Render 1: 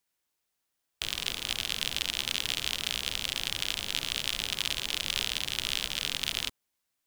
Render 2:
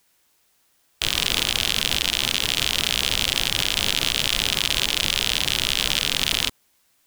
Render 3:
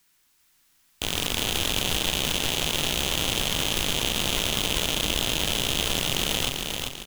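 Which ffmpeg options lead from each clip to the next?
-af "alimiter=level_in=8.41:limit=0.891:release=50:level=0:latency=1,volume=0.891"
-filter_complex "[0:a]acrossover=split=400|780|6500[s0][s1][s2][s3];[s1]aeval=exprs='abs(val(0))':c=same[s4];[s0][s4][s2][s3]amix=inputs=4:normalize=0,aeval=exprs='(tanh(8.91*val(0)+0.75)-tanh(0.75))/8.91':c=same,aecho=1:1:393|786|1179|1572|1965:0.631|0.271|0.117|0.0502|0.0216,volume=1.5"

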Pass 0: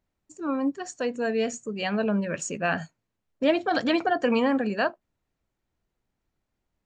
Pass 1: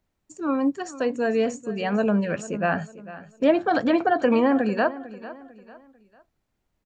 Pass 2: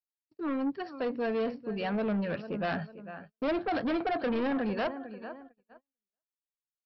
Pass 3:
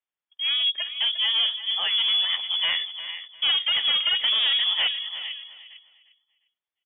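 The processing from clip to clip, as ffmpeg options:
-filter_complex "[0:a]acrossover=split=520|1800[s0][s1][s2];[s2]acompressor=threshold=0.00708:ratio=6[s3];[s0][s1][s3]amix=inputs=3:normalize=0,aecho=1:1:448|896|1344:0.15|0.0554|0.0205,volume=1.5"
-af "agate=range=0.01:threshold=0.00708:ratio=16:detection=peak,aresample=11025,asoftclip=type=tanh:threshold=0.0794,aresample=44100,volume=0.631"
-af "aecho=1:1:353|706|1059:0.211|0.0507|0.0122,lowpass=f=3100:t=q:w=0.5098,lowpass=f=3100:t=q:w=0.6013,lowpass=f=3100:t=q:w=0.9,lowpass=f=3100:t=q:w=2.563,afreqshift=-3600,volume=2.24"

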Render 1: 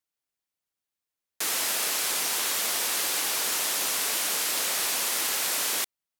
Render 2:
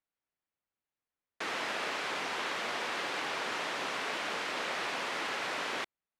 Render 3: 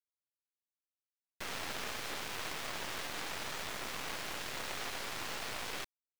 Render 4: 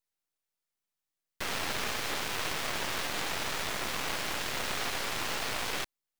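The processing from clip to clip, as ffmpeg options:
-af "lowpass=2300"
-af "aeval=exprs='0.0794*(cos(1*acos(clip(val(0)/0.0794,-1,1)))-cos(1*PI/2))+0.0126*(cos(3*acos(clip(val(0)/0.0794,-1,1)))-cos(3*PI/2))+0.0141*(cos(6*acos(clip(val(0)/0.0794,-1,1)))-cos(6*PI/2))+0.00562*(cos(7*acos(clip(val(0)/0.0794,-1,1)))-cos(7*PI/2))':c=same,acrusher=bits=6:mix=0:aa=0.000001,volume=0.668"
-af "aeval=exprs='abs(val(0))':c=same,volume=2.24"

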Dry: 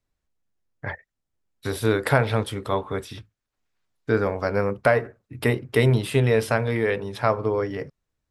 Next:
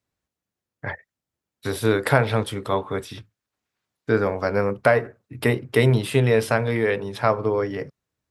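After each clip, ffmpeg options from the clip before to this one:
-af "highpass=85,volume=1.19"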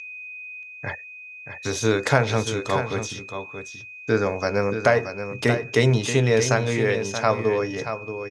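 -af "aeval=exprs='val(0)+0.0178*sin(2*PI*2500*n/s)':c=same,lowpass=f=6400:t=q:w=14,aecho=1:1:629:0.355,volume=0.891"

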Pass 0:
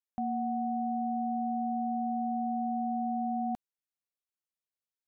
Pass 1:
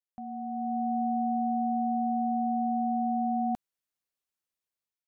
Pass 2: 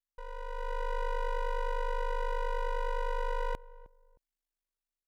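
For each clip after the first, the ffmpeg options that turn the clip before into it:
-af "dynaudnorm=f=250:g=5:m=3.55,volume=0.422"
-filter_complex "[0:a]aeval=exprs='abs(val(0))':c=same,aeval=exprs='val(0)*sin(2*PI*25*n/s)':c=same,asplit=2[s0][s1];[s1]adelay=311,lowpass=f=830:p=1,volume=0.126,asplit=2[s2][s3];[s3]adelay=311,lowpass=f=830:p=1,volume=0.27[s4];[s0][s2][s4]amix=inputs=3:normalize=0"

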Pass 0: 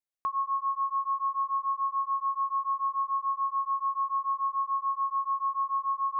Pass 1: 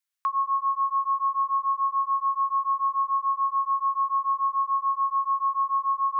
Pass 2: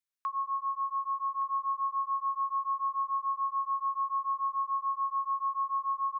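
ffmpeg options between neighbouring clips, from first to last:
-af "highpass=f=1100:w=0.5412,highpass=f=1100:w=1.3066,volume=2.37"
-af "aecho=1:1:1168:0.188,volume=0.422"

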